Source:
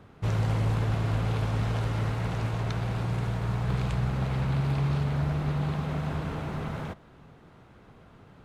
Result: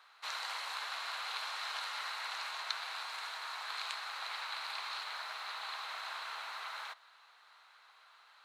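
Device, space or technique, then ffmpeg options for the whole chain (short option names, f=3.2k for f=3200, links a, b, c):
headphones lying on a table: -af "highpass=f=1k:w=0.5412,highpass=f=1k:w=1.3066,equalizer=f=4.1k:t=o:w=0.27:g=12"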